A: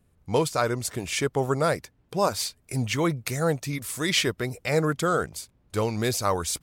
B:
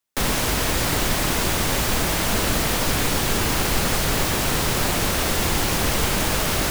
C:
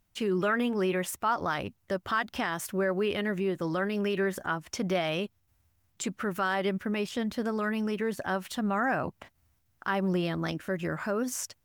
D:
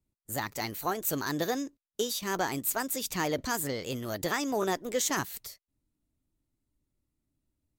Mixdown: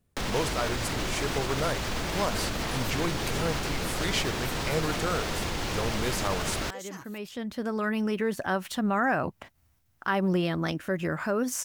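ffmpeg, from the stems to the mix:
-filter_complex "[0:a]volume=0.473,asplit=2[s0][s1];[1:a]acrossover=split=6900[s2][s3];[s3]acompressor=threshold=0.00891:ratio=4:attack=1:release=60[s4];[s2][s4]amix=inputs=2:normalize=0,alimiter=limit=0.141:level=0:latency=1:release=94,volume=0.596[s5];[2:a]adelay=200,volume=1.33[s6];[3:a]aecho=1:1:6.3:0.69,adelay=1800,volume=0.15[s7];[s1]apad=whole_len=522448[s8];[s6][s8]sidechaincompress=threshold=0.00447:ratio=10:attack=25:release=1090[s9];[s0][s5][s9][s7]amix=inputs=4:normalize=0"

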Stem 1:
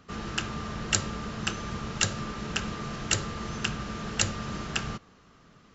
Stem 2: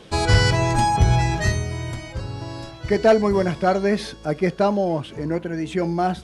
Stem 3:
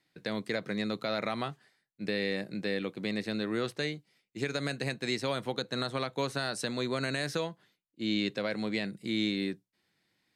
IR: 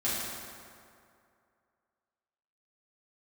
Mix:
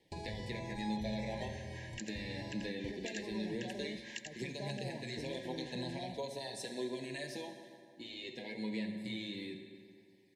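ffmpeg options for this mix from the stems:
-filter_complex "[0:a]tremolo=f=3.9:d=0.91,highpass=f=1500:t=q:w=6.5,adelay=1050,volume=0.447,asplit=2[s0][s1];[s1]volume=0.168[s2];[1:a]alimiter=limit=0.141:level=0:latency=1,acrossover=split=1400|5900[s3][s4][s5];[s3]acompressor=threshold=0.0224:ratio=4[s6];[s4]acompressor=threshold=0.00501:ratio=4[s7];[s5]acompressor=threshold=0.00112:ratio=4[s8];[s6][s7][s8]amix=inputs=3:normalize=0,agate=range=0.112:threshold=0.0158:ratio=16:detection=peak,volume=0.376[s9];[2:a]aphaser=in_gain=1:out_gain=1:delay=3.8:decay=0.35:speed=0.2:type=triangular,acompressor=threshold=0.01:ratio=3,asplit=2[s10][s11];[s11]adelay=7.1,afreqshift=-0.78[s12];[s10][s12]amix=inputs=2:normalize=1,volume=0.891,asplit=3[s13][s14][s15];[s14]volume=0.299[s16];[s15]apad=whole_len=299622[s17];[s0][s17]sidechaincompress=threshold=0.00251:ratio=8:attack=7.6:release=142[s18];[s18][s9]amix=inputs=2:normalize=0,acompressor=threshold=0.00891:ratio=6,volume=1[s19];[3:a]atrim=start_sample=2205[s20];[s16][s20]afir=irnorm=-1:irlink=0[s21];[s2]aecho=0:1:85:1[s22];[s13][s19][s21][s22]amix=inputs=4:normalize=0,asuperstop=centerf=1300:order=20:qfactor=2.1"

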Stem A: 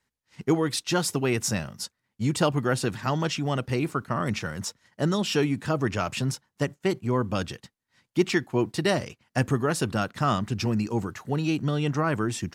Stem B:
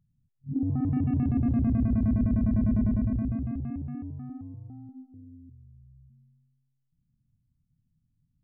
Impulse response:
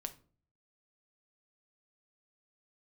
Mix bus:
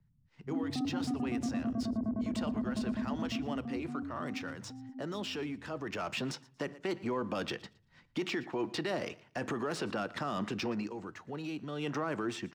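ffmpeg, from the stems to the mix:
-filter_complex "[0:a]dynaudnorm=f=160:g=7:m=1.78,alimiter=limit=0.15:level=0:latency=1:release=11,adynamicsmooth=sensitivity=4.5:basefreq=4200,volume=2,afade=t=in:st=5.79:d=0.78:silence=0.298538,afade=t=out:st=10.69:d=0.22:silence=0.266073,afade=t=in:st=11.75:d=0.24:silence=0.334965,asplit=3[s0][s1][s2];[s1]volume=0.473[s3];[s2]volume=0.0891[s4];[1:a]lowpass=f=1200:w=0.5412,lowpass=f=1200:w=1.3066,volume=1.19[s5];[2:a]atrim=start_sample=2205[s6];[s3][s6]afir=irnorm=-1:irlink=0[s7];[s4]aecho=0:1:115|230|345:1|0.19|0.0361[s8];[s0][s5][s7][s8]amix=inputs=4:normalize=0,acrossover=split=230|590|4700[s9][s10][s11][s12];[s9]acompressor=threshold=0.002:ratio=4[s13];[s10]acompressor=threshold=0.0282:ratio=4[s14];[s11]acompressor=threshold=0.02:ratio=4[s15];[s12]acompressor=threshold=0.00224:ratio=4[s16];[s13][s14][s15][s16]amix=inputs=4:normalize=0,alimiter=level_in=1.19:limit=0.0631:level=0:latency=1:release=66,volume=0.841"

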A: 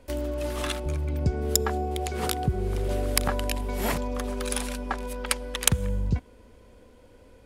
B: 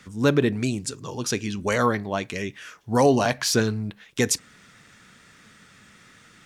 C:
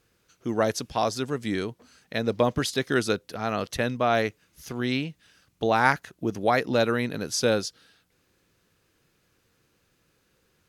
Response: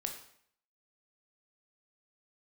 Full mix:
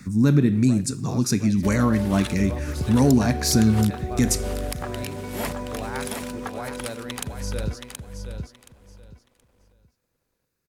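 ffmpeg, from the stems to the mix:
-filter_complex "[0:a]highshelf=f=10000:g=-11,alimiter=limit=0.15:level=0:latency=1:release=279,aeval=exprs='sgn(val(0))*max(abs(val(0))-0.00211,0)':c=same,adelay=1550,volume=0.891,asplit=2[s0][s1];[s1]volume=0.531[s2];[1:a]lowshelf=f=340:t=q:w=1.5:g=10.5,volume=0.891,asplit=2[s3][s4];[s4]volume=0.251[s5];[2:a]equalizer=f=120:w=1.5:g=5,adelay=100,volume=0.178,asplit=3[s6][s7][s8];[s7]volume=0.188[s9];[s8]volume=0.447[s10];[s3][s6]amix=inputs=2:normalize=0,asuperstop=centerf=3100:order=4:qfactor=3.6,alimiter=limit=0.211:level=0:latency=1:release=405,volume=1[s11];[3:a]atrim=start_sample=2205[s12];[s5][s9]amix=inputs=2:normalize=0[s13];[s13][s12]afir=irnorm=-1:irlink=0[s14];[s2][s10]amix=inputs=2:normalize=0,aecho=0:1:724|1448|2172:1|0.21|0.0441[s15];[s0][s11][s14][s15]amix=inputs=4:normalize=0,highshelf=f=8500:g=10"

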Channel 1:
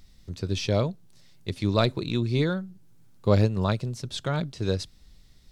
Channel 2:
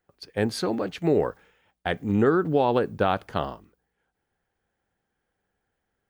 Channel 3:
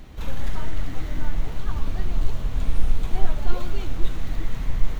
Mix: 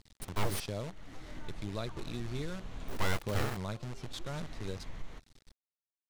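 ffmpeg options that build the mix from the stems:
-filter_complex "[0:a]acrusher=bits=6:dc=4:mix=0:aa=0.000001,volume=0.596[s0];[1:a]aeval=exprs='abs(val(0))':c=same,acrusher=bits=6:mix=0:aa=0.000001,volume=0.891,asplit=3[s1][s2][s3];[s1]atrim=end=0.6,asetpts=PTS-STARTPTS,afade=t=out:st=0.596:d=0.004:c=hsin[s4];[s2]atrim=start=0.6:end=2.88,asetpts=PTS-STARTPTS,volume=0[s5];[s3]atrim=start=2.88,asetpts=PTS-STARTPTS,afade=t=in:d=0.004:c=hsin[s6];[s4][s5][s6]concat=n=3:v=0:a=1,asplit=2[s7][s8];[2:a]lowshelf=f=140:g=-11,adelay=200,volume=0.708[s9];[s8]apad=whole_len=229282[s10];[s9][s10]sidechaincompress=threshold=0.0141:ratio=8:attack=16:release=927[s11];[s0][s11]amix=inputs=2:normalize=0,lowpass=8900,acompressor=threshold=0.00794:ratio=2,volume=1[s12];[s7][s12]amix=inputs=2:normalize=0,asoftclip=type=tanh:threshold=0.1"

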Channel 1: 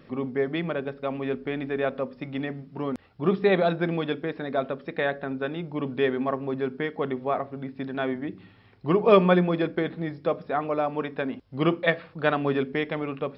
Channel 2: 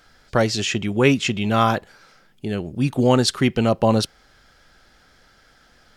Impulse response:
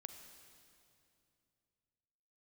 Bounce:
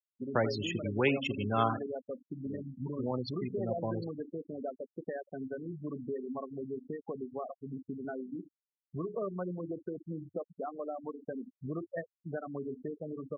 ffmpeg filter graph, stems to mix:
-filter_complex "[0:a]lowpass=1600,acompressor=threshold=0.02:ratio=4,adelay=100,volume=0.596,asplit=2[s0][s1];[s1]volume=0.562[s2];[1:a]highpass=f=91:w=0.5412,highpass=f=91:w=1.3066,aeval=exprs='sgn(val(0))*max(abs(val(0))-0.0211,0)':c=same,volume=0.282,afade=t=out:st=1.61:d=0.22:silence=0.375837,asplit=3[s3][s4][s5];[s4]volume=0.447[s6];[s5]volume=0.335[s7];[2:a]atrim=start_sample=2205[s8];[s2][s6]amix=inputs=2:normalize=0[s9];[s9][s8]afir=irnorm=-1:irlink=0[s10];[s7]aecho=0:1:79:1[s11];[s0][s3][s10][s11]amix=inputs=4:normalize=0,acrossover=split=320|3000[s12][s13][s14];[s12]acompressor=threshold=0.02:ratio=6[s15];[s15][s13][s14]amix=inputs=3:normalize=0,afftfilt=real='re*gte(hypot(re,im),0.0355)':imag='im*gte(hypot(re,im),0.0355)':win_size=1024:overlap=0.75,adynamicequalizer=threshold=0.00126:dfrequency=100:dqfactor=4.7:tfrequency=100:tqfactor=4.7:attack=5:release=100:ratio=0.375:range=3:mode=boostabove:tftype=bell"

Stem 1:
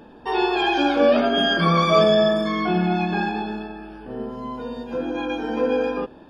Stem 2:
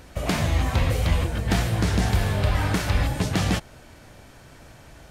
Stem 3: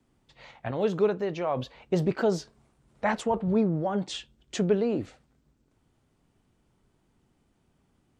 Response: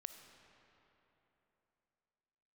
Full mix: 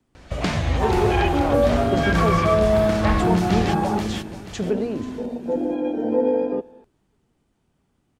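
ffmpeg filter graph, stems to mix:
-filter_complex "[0:a]afwtdn=0.0794,adelay=550,volume=1.33,asplit=2[s0][s1];[s1]volume=0.237[s2];[1:a]adelay=150,volume=1.12,asplit=2[s3][s4];[s4]volume=0.376[s5];[2:a]volume=1,asplit=2[s6][s7];[s7]volume=0.141[s8];[s0][s3]amix=inputs=2:normalize=0,lowpass=6200,alimiter=limit=0.266:level=0:latency=1:release=384,volume=1[s9];[3:a]atrim=start_sample=2205[s10];[s2][s10]afir=irnorm=-1:irlink=0[s11];[s5][s8]amix=inputs=2:normalize=0,aecho=0:1:484|968|1452|1936|2420:1|0.35|0.122|0.0429|0.015[s12];[s6][s9][s11][s12]amix=inputs=4:normalize=0"

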